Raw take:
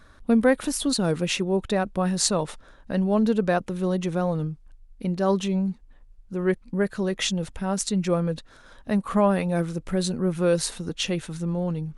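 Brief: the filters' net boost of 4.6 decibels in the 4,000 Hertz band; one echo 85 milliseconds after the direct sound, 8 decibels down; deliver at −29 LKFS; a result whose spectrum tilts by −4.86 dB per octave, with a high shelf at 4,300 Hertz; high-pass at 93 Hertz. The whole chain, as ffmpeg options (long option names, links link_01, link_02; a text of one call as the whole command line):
ffmpeg -i in.wav -af "highpass=93,equalizer=frequency=4000:width_type=o:gain=8.5,highshelf=frequency=4300:gain=-5.5,aecho=1:1:85:0.398,volume=-5dB" out.wav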